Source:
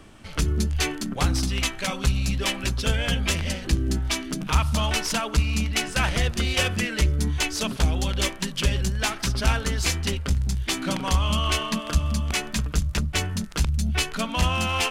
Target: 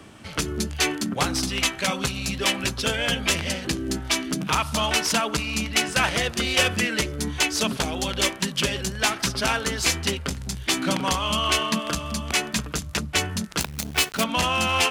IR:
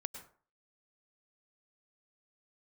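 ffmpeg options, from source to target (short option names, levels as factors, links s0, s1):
-filter_complex "[0:a]acrossover=split=240[s0][s1];[s0]acompressor=threshold=0.0282:ratio=6[s2];[s2][s1]amix=inputs=2:normalize=0,asettb=1/sr,asplit=3[s3][s4][s5];[s3]atrim=end=13.604[s6];[s4]atrim=start=13.6:end=14.24,asetpts=PTS-STARTPTS,afade=t=in:d=0.004:c=qsin,afade=t=out:st=0.636:d=0.004:c=qsin,acrusher=bits=5:dc=4:mix=0:aa=0.000001[s7];[s5]atrim=start=14.236[s8];[s6][s7]acrossfade=d=0.004:c1=hsin:c2=qsin[s9];[s9][s8]acrossfade=d=0.004:c1=qsin:c2=hsin,highpass=81,volume=1.5"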